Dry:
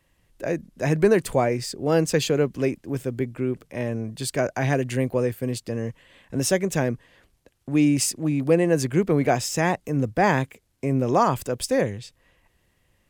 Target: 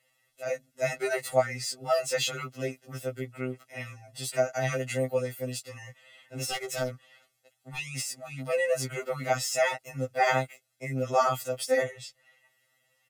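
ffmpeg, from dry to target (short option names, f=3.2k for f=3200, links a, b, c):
-filter_complex "[0:a]deesser=0.5,highpass=f=860:p=1,asplit=3[a][b][c];[a]afade=t=out:st=5.25:d=0.02[d];[b]aeval=exprs='0.0631*(abs(mod(val(0)/0.0631+3,4)-2)-1)':c=same,afade=t=in:st=5.25:d=0.02,afade=t=out:st=7.77:d=0.02[e];[c]afade=t=in:st=7.77:d=0.02[f];[d][e][f]amix=inputs=3:normalize=0,aecho=1:1:1.5:0.86,afftfilt=real='re*2.45*eq(mod(b,6),0)':imag='im*2.45*eq(mod(b,6),0)':win_size=2048:overlap=0.75"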